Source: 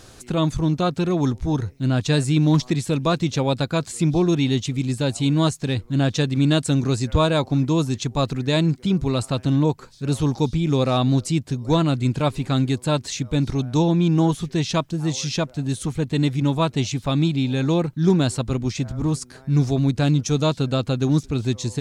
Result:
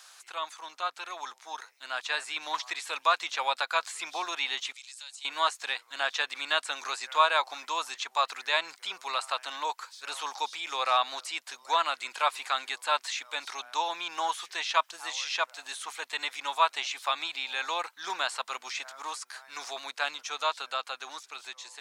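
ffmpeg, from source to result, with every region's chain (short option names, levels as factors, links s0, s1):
-filter_complex "[0:a]asettb=1/sr,asplit=3[s0][s1][s2];[s0]atrim=end=4.724[s3];[s1]atrim=start=4.72:end=5.25,asetpts=PTS-STARTPTS,afade=t=in:d=0.004:c=qsin,afade=t=out:st=0.526:d=0.004:c=qsin,lowpass=6700,aderivative,acompressor=threshold=0.00501:ratio=2.5:attack=3.2:release=140:knee=1:detection=peak[s4];[s2]atrim=start=5.246[s5];[s3][s4]acrossfade=d=0.004:c1=hsin:c2=qsin[s6];[s6][s5]acrossfade=d=0.004:c1=qsin:c2=hsin,acrossover=split=3100[s7][s8];[s8]acompressor=threshold=0.00708:ratio=4:attack=1:release=60[s9];[s7][s9]amix=inputs=2:normalize=0,highpass=f=910:w=0.5412,highpass=f=910:w=1.3066,dynaudnorm=f=600:g=7:m=2.24,volume=0.708"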